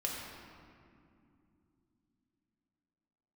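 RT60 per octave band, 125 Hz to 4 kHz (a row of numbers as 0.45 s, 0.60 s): 4.0 s, 4.4 s, 3.0 s, 2.3 s, 1.9 s, 1.4 s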